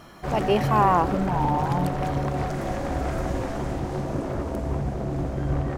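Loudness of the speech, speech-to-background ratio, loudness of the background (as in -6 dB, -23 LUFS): -24.5 LUFS, 3.5 dB, -28.0 LUFS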